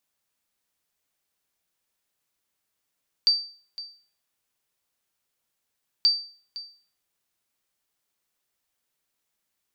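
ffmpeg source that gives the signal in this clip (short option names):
-f lavfi -i "aevalsrc='0.237*(sin(2*PI*4650*mod(t,2.78))*exp(-6.91*mod(t,2.78)/0.43)+0.141*sin(2*PI*4650*max(mod(t,2.78)-0.51,0))*exp(-6.91*max(mod(t,2.78)-0.51,0)/0.43))':d=5.56:s=44100"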